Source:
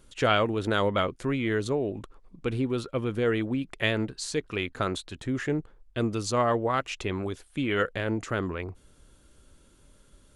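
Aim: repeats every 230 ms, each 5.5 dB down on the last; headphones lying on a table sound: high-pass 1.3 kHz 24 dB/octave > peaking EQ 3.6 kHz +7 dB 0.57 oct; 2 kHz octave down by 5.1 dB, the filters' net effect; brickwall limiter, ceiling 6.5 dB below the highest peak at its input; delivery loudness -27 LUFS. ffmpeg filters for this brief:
-af "equalizer=f=2000:t=o:g=-7,alimiter=limit=0.106:level=0:latency=1,highpass=f=1300:w=0.5412,highpass=f=1300:w=1.3066,equalizer=f=3600:t=o:w=0.57:g=7,aecho=1:1:230|460|690|920|1150|1380|1610:0.531|0.281|0.149|0.079|0.0419|0.0222|0.0118,volume=3.16"

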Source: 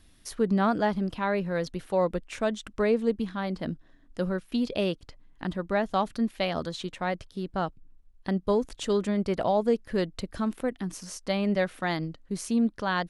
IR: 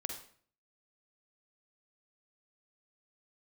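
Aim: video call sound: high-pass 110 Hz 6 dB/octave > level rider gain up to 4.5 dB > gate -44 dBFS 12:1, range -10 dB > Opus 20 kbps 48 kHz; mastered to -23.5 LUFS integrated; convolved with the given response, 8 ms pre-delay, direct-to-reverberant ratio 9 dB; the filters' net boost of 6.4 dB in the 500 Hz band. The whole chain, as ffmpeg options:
-filter_complex "[0:a]equalizer=f=500:t=o:g=8,asplit=2[s0][s1];[1:a]atrim=start_sample=2205,adelay=8[s2];[s1][s2]afir=irnorm=-1:irlink=0,volume=0.355[s3];[s0][s3]amix=inputs=2:normalize=0,highpass=f=110:p=1,dynaudnorm=m=1.68,agate=range=0.316:threshold=0.00631:ratio=12,volume=1.19" -ar 48000 -c:a libopus -b:a 20k

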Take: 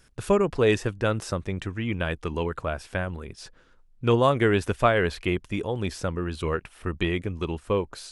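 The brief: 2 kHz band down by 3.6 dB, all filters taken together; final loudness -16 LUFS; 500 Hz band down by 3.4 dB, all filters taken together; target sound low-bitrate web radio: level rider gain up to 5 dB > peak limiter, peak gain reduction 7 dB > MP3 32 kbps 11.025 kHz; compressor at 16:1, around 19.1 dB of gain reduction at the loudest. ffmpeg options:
-af "equalizer=f=500:t=o:g=-4,equalizer=f=2000:t=o:g=-4.5,acompressor=threshold=0.0141:ratio=16,dynaudnorm=m=1.78,alimiter=level_in=2.66:limit=0.0631:level=0:latency=1,volume=0.376,volume=29.9" -ar 11025 -c:a libmp3lame -b:a 32k

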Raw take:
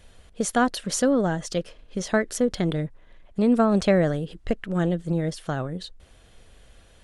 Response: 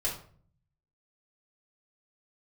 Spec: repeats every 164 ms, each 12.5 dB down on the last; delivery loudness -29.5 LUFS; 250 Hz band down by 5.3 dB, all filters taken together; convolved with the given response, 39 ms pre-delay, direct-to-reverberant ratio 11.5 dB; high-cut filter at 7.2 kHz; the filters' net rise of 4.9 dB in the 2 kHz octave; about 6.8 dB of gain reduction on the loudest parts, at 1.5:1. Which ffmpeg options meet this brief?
-filter_complex "[0:a]lowpass=7200,equalizer=f=250:t=o:g=-7,equalizer=f=2000:t=o:g=6.5,acompressor=threshold=0.0178:ratio=1.5,aecho=1:1:164|328|492:0.237|0.0569|0.0137,asplit=2[s0][s1];[1:a]atrim=start_sample=2205,adelay=39[s2];[s1][s2]afir=irnorm=-1:irlink=0,volume=0.15[s3];[s0][s3]amix=inputs=2:normalize=0,volume=1.26"

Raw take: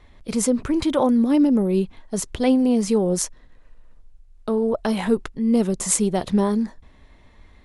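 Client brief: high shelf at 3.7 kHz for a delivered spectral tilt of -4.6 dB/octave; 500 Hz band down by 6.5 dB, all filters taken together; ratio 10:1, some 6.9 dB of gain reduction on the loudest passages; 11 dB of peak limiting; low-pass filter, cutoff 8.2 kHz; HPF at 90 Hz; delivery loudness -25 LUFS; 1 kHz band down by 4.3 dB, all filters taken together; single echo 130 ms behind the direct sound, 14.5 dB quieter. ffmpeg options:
-af "highpass=90,lowpass=8200,equalizer=f=500:t=o:g=-7.5,equalizer=f=1000:t=o:g=-3,highshelf=f=3700:g=7,acompressor=threshold=0.0708:ratio=10,alimiter=limit=0.0891:level=0:latency=1,aecho=1:1:130:0.188,volume=1.68"

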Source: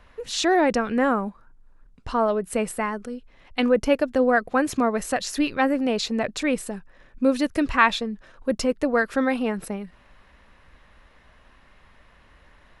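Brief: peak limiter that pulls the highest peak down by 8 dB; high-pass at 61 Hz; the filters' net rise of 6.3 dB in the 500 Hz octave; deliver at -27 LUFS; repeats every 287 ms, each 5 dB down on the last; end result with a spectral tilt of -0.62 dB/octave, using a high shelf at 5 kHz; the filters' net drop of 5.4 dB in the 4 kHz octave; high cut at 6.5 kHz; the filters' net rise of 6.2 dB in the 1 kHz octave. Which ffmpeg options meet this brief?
-af "highpass=61,lowpass=6500,equalizer=f=500:t=o:g=5.5,equalizer=f=1000:t=o:g=6.5,equalizer=f=4000:t=o:g=-8,highshelf=f=5000:g=3,alimiter=limit=0.376:level=0:latency=1,aecho=1:1:287|574|861|1148|1435|1722|2009:0.562|0.315|0.176|0.0988|0.0553|0.031|0.0173,volume=0.447"

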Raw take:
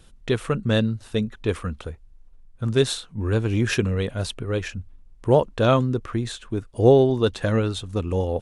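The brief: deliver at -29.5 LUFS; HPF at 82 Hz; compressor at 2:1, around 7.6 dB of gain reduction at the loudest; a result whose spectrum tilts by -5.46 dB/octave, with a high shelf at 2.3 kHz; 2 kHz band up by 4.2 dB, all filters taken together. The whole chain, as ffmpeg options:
-af "highpass=82,equalizer=f=2000:t=o:g=7.5,highshelf=f=2300:g=-3.5,acompressor=threshold=0.0708:ratio=2,volume=0.75"

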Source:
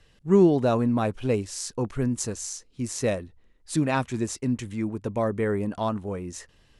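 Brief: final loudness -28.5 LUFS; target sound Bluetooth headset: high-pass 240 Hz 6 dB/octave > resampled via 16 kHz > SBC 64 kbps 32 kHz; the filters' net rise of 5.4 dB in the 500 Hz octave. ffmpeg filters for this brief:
-af "highpass=f=240:p=1,equalizer=f=500:t=o:g=8.5,aresample=16000,aresample=44100,volume=0.562" -ar 32000 -c:a sbc -b:a 64k

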